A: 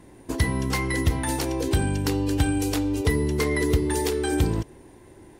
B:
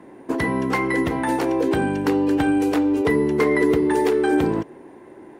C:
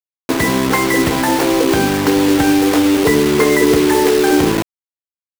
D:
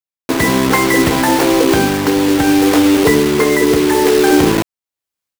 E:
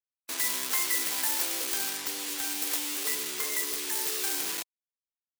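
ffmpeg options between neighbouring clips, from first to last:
-filter_complex "[0:a]acrossover=split=180 2300:gain=0.0708 1 0.158[s0][s1][s2];[s0][s1][s2]amix=inputs=3:normalize=0,volume=2.37"
-filter_complex "[0:a]asplit=2[s0][s1];[s1]alimiter=limit=0.168:level=0:latency=1:release=337,volume=0.841[s2];[s0][s2]amix=inputs=2:normalize=0,aeval=exprs='sgn(val(0))*max(abs(val(0))-0.0168,0)':c=same,acrusher=bits=3:mix=0:aa=0.000001,volume=1.5"
-af "dynaudnorm=f=220:g=3:m=6.31,volume=0.891"
-af "afftfilt=real='re*gte(hypot(re,im),0.0251)':imag='im*gte(hypot(re,im),0.0251)':win_size=1024:overlap=0.75,asoftclip=type=tanh:threshold=0.282,aderivative,volume=0.708"

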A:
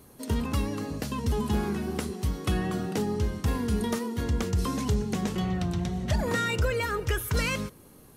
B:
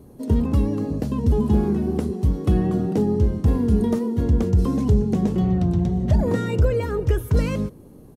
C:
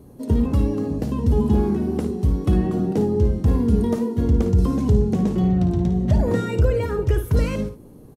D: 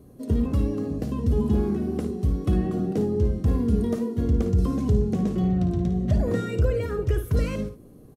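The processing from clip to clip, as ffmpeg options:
-af "firequalizer=gain_entry='entry(320,0);entry(1300,-14);entry(2200,-16)':delay=0.05:min_phase=1,volume=2.82"
-af "aecho=1:1:55|72:0.335|0.188"
-af "asuperstop=centerf=890:order=4:qfactor=6.1,volume=0.631"

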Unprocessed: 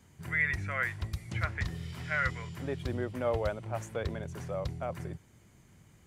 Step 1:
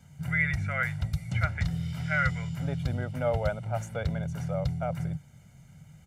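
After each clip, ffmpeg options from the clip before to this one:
-af "equalizer=f=150:w=3.2:g=11.5,aecho=1:1:1.4:0.69"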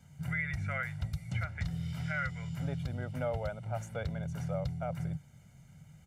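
-af "alimiter=limit=0.0891:level=0:latency=1:release=300,volume=0.668"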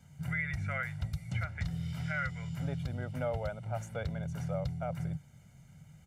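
-af anull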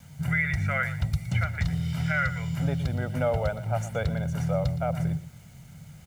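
-af "aecho=1:1:117:0.178,acrusher=bits=10:mix=0:aa=0.000001,volume=2.66"

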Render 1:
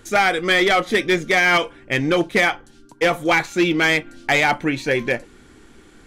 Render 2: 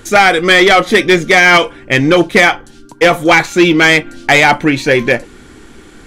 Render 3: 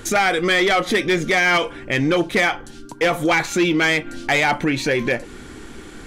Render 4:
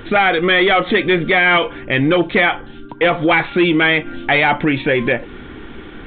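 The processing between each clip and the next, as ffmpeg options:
-af "acontrast=68,volume=1.5"
-af "alimiter=limit=0.266:level=0:latency=1:release=163"
-af "aresample=8000,aresample=44100,volume=1.58"

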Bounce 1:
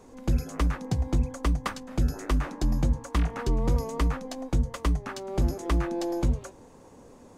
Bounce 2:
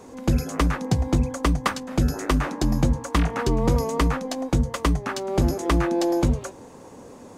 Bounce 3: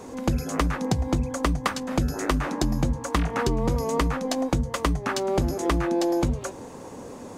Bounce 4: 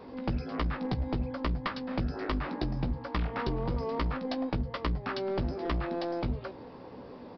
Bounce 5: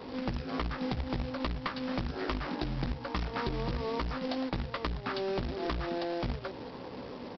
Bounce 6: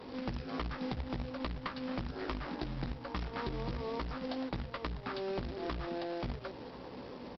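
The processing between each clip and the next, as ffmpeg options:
-af "highpass=f=98:p=1,volume=2.51"
-af "acompressor=threshold=0.0562:ratio=4,volume=1.58"
-filter_complex "[0:a]asplit=2[s0][s1];[s1]adelay=16,volume=0.398[s2];[s0][s2]amix=inputs=2:normalize=0,aresample=11025,aeval=exprs='clip(val(0),-1,0.0794)':c=same,aresample=44100,volume=0.447"
-af "acompressor=threshold=0.0158:ratio=2.5,aresample=11025,acrusher=bits=2:mode=log:mix=0:aa=0.000001,aresample=44100,volume=1.41"
-af "aecho=1:1:1037:0.075,volume=0.631" -ar 48000 -c:a libopus -b:a 48k

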